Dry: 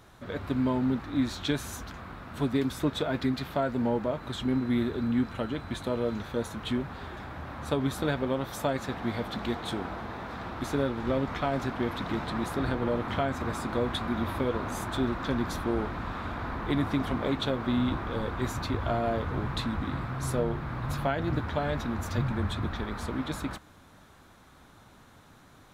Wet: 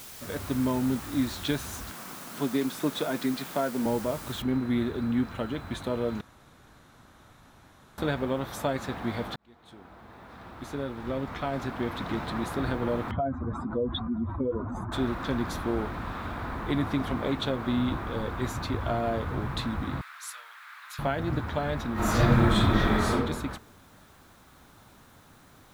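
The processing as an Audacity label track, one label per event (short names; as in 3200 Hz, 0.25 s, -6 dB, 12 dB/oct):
1.920000	3.860000	HPF 160 Hz 24 dB/oct
4.420000	4.420000	noise floor step -45 dB -65 dB
6.210000	7.980000	room tone
9.360000	12.120000	fade in
13.110000	14.920000	spectral contrast raised exponent 2.2
20.010000	20.990000	HPF 1400 Hz 24 dB/oct
21.930000	23.110000	reverb throw, RT60 0.86 s, DRR -10.5 dB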